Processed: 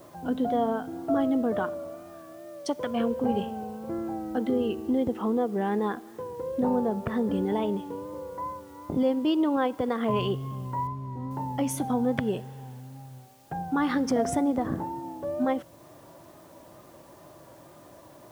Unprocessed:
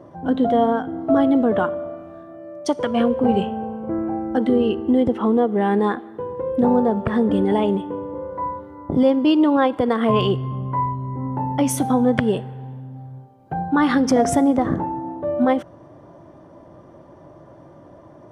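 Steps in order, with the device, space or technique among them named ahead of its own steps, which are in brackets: noise-reduction cassette on a plain deck (tape noise reduction on one side only encoder only; wow and flutter; white noise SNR 32 dB); 10.87–11.31 s: low-pass 2.2 kHz 6 dB/octave; trim -8.5 dB

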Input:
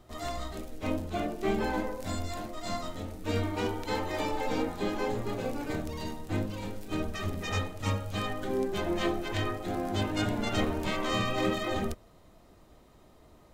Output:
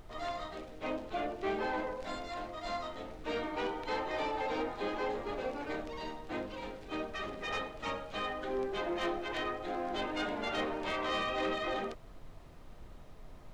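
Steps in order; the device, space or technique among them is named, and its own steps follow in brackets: aircraft cabin announcement (band-pass 390–3700 Hz; saturation -26.5 dBFS, distortion -18 dB; brown noise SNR 12 dB)

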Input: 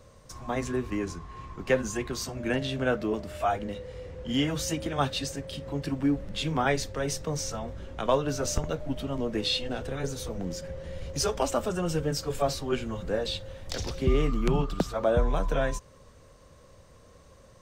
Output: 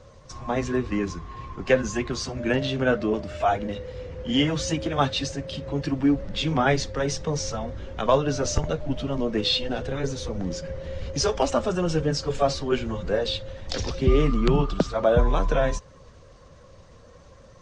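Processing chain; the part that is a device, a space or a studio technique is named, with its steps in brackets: clip after many re-uploads (low-pass 6.6 kHz 24 dB/octave; coarse spectral quantiser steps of 15 dB); trim +5 dB

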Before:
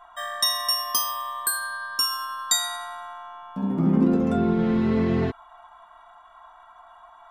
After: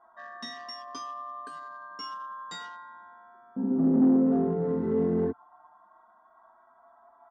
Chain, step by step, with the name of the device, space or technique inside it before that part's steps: local Wiener filter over 15 samples; barber-pole flanger into a guitar amplifier (endless flanger 5.8 ms +0.31 Hz; saturation -22 dBFS, distortion -13 dB; cabinet simulation 89–4600 Hz, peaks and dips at 120 Hz -7 dB, 600 Hz -4 dB, 2.3 kHz -9 dB, 4.1 kHz -9 dB); graphic EQ 250/500/2000/8000 Hz +11/+9/+3/+4 dB; trim -6 dB

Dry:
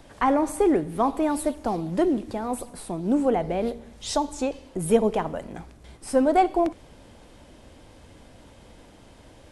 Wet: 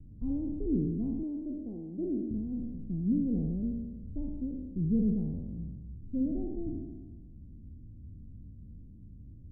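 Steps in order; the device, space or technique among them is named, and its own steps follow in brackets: spectral sustain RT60 1.30 s; the neighbour's flat through the wall (low-pass 220 Hz 24 dB/octave; peaking EQ 85 Hz +4 dB 0.75 oct); 1.23–2.31 s: resonant low shelf 230 Hz -13.5 dB, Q 1.5

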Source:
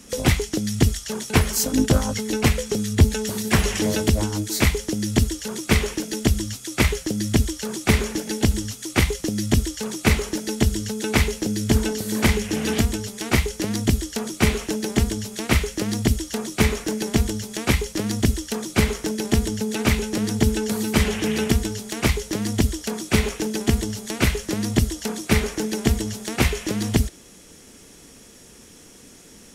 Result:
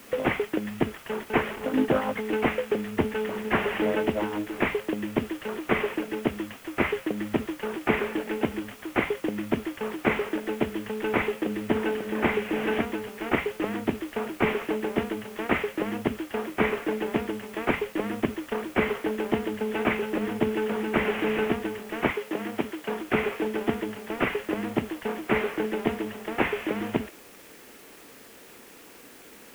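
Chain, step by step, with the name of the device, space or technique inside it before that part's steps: army field radio (band-pass 330–3100 Hz; CVSD coder 16 kbps; white noise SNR 24 dB); 22.11–22.89 s: high-pass 220 Hz 6 dB/octave; trim +2 dB

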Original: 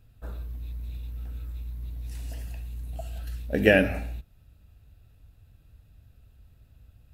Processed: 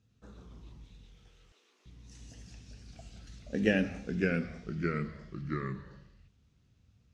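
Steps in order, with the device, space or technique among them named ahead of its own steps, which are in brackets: car door speaker (cabinet simulation 110–7600 Hz, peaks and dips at 200 Hz +6 dB, 640 Hz -9 dB, 910 Hz -4 dB, 1.5 kHz -4 dB, 2.4 kHz -4 dB, 6.2 kHz +10 dB); 0.84–1.86 s: steep high-pass 410 Hz 36 dB/octave; ever faster or slower copies 110 ms, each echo -2 st, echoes 3; trim -7.5 dB

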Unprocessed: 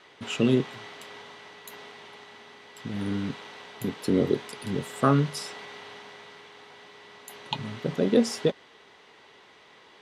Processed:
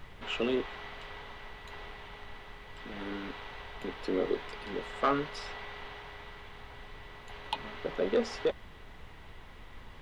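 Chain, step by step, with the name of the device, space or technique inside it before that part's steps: aircraft cabin announcement (band-pass 450–3200 Hz; saturation -19 dBFS, distortion -15 dB; brown noise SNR 11 dB)

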